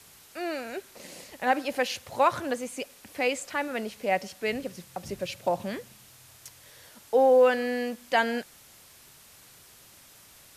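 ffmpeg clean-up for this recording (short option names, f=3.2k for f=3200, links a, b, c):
-af "afwtdn=0.0025"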